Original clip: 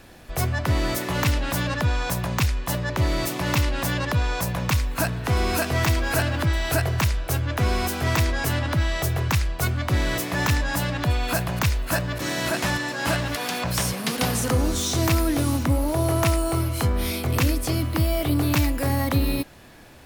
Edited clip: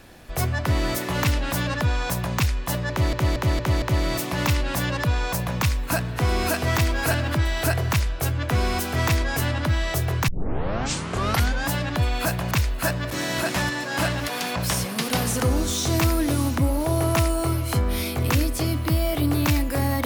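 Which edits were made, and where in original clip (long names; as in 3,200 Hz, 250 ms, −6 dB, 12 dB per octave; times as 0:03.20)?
0:02.90: stutter 0.23 s, 5 plays
0:09.36: tape start 1.39 s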